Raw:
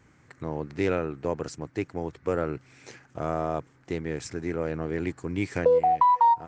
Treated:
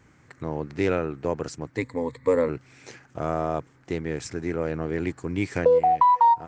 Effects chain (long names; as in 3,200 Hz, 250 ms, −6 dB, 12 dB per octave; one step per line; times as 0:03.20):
0:01.77–0:02.49: EQ curve with evenly spaced ripples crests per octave 1, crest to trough 15 dB
level +2 dB